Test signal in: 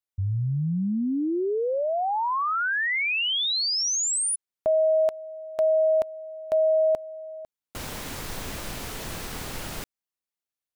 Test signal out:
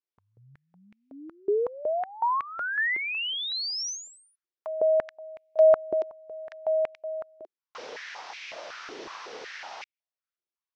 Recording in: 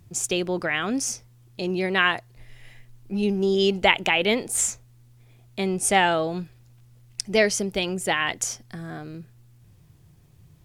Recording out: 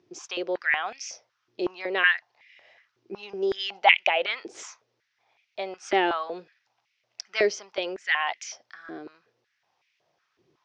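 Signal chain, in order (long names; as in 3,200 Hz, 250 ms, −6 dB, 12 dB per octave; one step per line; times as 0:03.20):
elliptic low-pass filter 5,800 Hz, stop band 60 dB
high-pass on a step sequencer 5.4 Hz 360–2,300 Hz
level −6 dB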